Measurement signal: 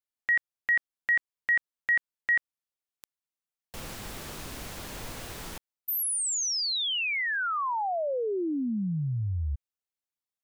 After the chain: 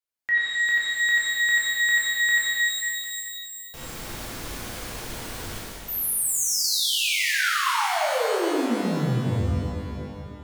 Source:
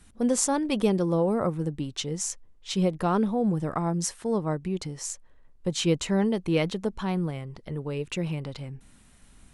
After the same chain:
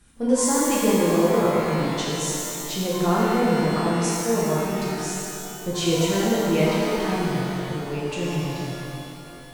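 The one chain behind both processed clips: shimmer reverb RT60 2.6 s, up +12 st, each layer -8 dB, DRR -7 dB; gain -3 dB

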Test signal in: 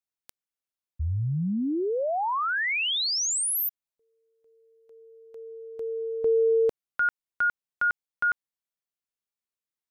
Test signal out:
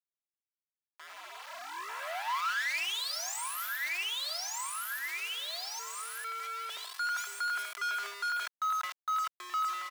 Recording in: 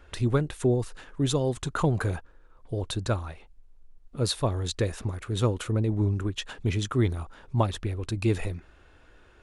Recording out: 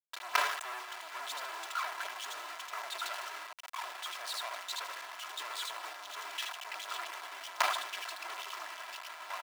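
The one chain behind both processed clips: Wiener smoothing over 25 samples; feedback echo 76 ms, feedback 56%, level -3.5 dB; in parallel at -12 dB: wavefolder -25.5 dBFS; on the sum: reverb removal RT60 1.3 s; echoes that change speed 0.767 s, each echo -2 st, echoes 3, each echo -6 dB; companded quantiser 2-bit; HPF 880 Hz 24 dB/oct; high shelf 4600 Hz -10 dB; comb 3 ms, depth 57%; sustainer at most 67 dB/s; gain -6 dB

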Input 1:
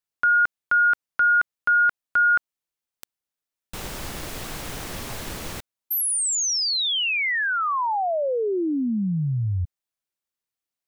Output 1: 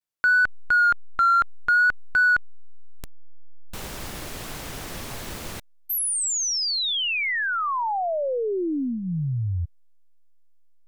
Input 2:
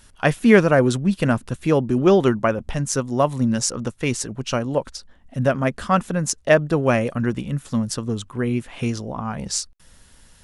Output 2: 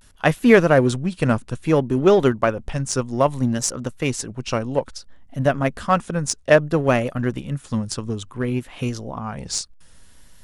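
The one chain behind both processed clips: dynamic EQ 200 Hz, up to -6 dB, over -39 dBFS, Q 7; vibrato 0.6 Hz 69 cents; in parallel at -7 dB: backlash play -13 dBFS; on the sum: gain -1.5 dB

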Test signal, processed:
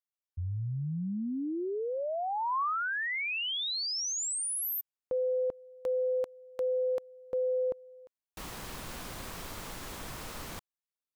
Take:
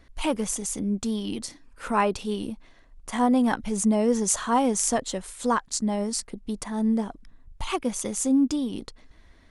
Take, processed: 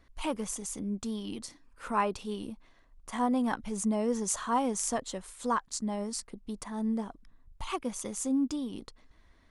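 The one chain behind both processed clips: bell 1100 Hz +4 dB 0.55 oct; gain -7.5 dB

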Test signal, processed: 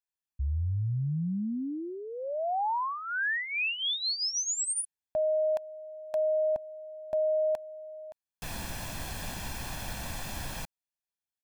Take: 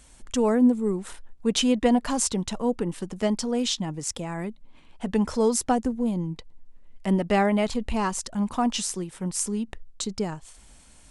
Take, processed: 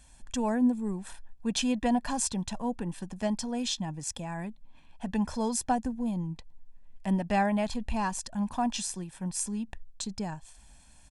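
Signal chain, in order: comb 1.2 ms, depth 57%; gain -6 dB

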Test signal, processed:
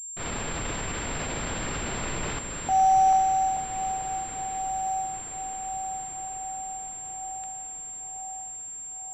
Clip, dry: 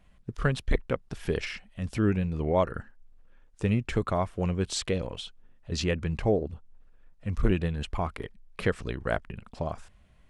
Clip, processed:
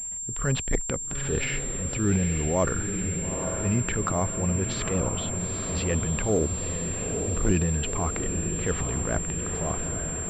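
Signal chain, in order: transient shaper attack -9 dB, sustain +8 dB; diffused feedback echo 0.895 s, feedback 63%, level -7.5 dB; in parallel at 0 dB: compressor, threshold -37 dBFS; on the sum: pulse-width modulation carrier 7400 Hz

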